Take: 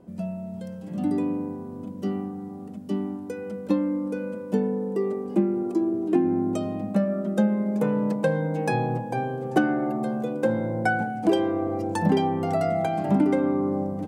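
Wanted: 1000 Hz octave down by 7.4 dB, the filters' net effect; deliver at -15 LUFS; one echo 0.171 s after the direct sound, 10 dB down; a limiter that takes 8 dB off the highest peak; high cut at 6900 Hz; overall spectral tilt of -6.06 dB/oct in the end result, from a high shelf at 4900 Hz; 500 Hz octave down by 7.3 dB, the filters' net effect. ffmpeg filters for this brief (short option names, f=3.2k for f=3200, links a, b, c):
-af "lowpass=6.9k,equalizer=f=500:t=o:g=-8.5,equalizer=f=1k:t=o:g=-6,highshelf=f=4.9k:g=-7.5,alimiter=limit=-20dB:level=0:latency=1,aecho=1:1:171:0.316,volume=16dB"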